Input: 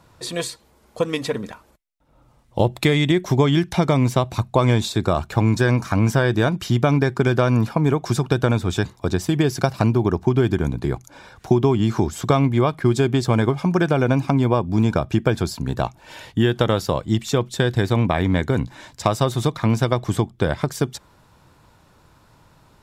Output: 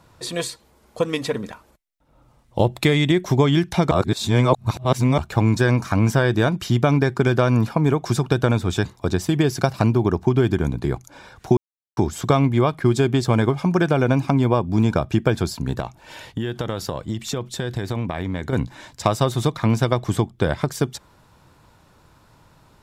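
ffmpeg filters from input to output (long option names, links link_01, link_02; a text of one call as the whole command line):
ffmpeg -i in.wav -filter_complex "[0:a]asettb=1/sr,asplit=3[link_01][link_02][link_03];[link_01]atrim=end=15.794[link_04];[link_02]atrim=start=15.79:end=18.53,asetpts=PTS-STARTPTS,afade=type=in:duration=0.004:curve=qsin,afade=type=out:start_time=2.736:duration=0.004:curve=qsin,acompressor=threshold=-21dB:ratio=6:attack=3.2:release=140:knee=1:detection=peak[link_05];[link_03]atrim=start=18.526[link_06];[link_04][link_05]acrossfade=duration=0.004:curve1=hsin:curve2=qsin[link_07];[link_07][link_06]acrossfade=duration=0.004:curve1=qsin:curve2=hsin,asplit=5[link_08][link_09][link_10][link_11][link_12];[link_08]atrim=end=3.912[link_13];[link_09]atrim=start=3.908:end=5.182,asetpts=PTS-STARTPTS,areverse[link_14];[link_10]atrim=start=5.178:end=11.57,asetpts=PTS-STARTPTS,afade=type=out:start_time=6.388:duration=0.004:curve=hsin[link_15];[link_11]atrim=start=11.57:end=11.97,asetpts=PTS-STARTPTS,volume=0[link_16];[link_12]atrim=start=11.97,asetpts=PTS-STARTPTS,afade=type=in:duration=0.004:curve=hsin[link_17];[link_13][link_14]acrossfade=duration=0.004:curve1=hsin:curve2=hsin[link_18];[link_15][link_16][link_17]concat=n=3:v=0:a=1[link_19];[link_18][link_19]acrossfade=duration=0.004:curve1=hsin:curve2=hsin" out.wav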